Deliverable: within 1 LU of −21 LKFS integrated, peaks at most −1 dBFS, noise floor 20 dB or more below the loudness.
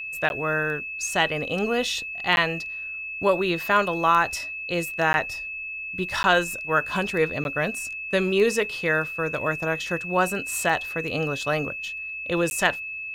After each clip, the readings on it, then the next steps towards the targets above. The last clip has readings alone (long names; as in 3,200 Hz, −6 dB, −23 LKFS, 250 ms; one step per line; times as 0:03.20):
number of dropouts 6; longest dropout 11 ms; interfering tone 2,600 Hz; level of the tone −31 dBFS; integrated loudness −24.5 LKFS; sample peak −5.5 dBFS; target loudness −21.0 LKFS
→ repair the gap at 0:00.29/0:02.36/0:05.13/0:06.23/0:07.44/0:12.50, 11 ms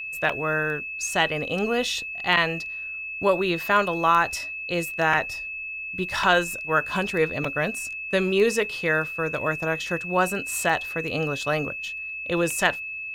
number of dropouts 0; interfering tone 2,600 Hz; level of the tone −31 dBFS
→ notch filter 2,600 Hz, Q 30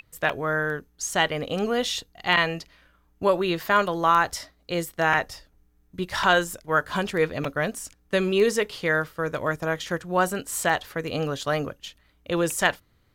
interfering tone none found; integrated loudness −25.0 LKFS; sample peak −6.0 dBFS; target loudness −21.0 LKFS
→ level +4 dB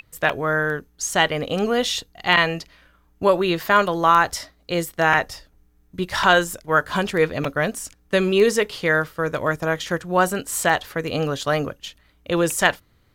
integrated loudness −21.0 LKFS; sample peak −2.0 dBFS; background noise floor −60 dBFS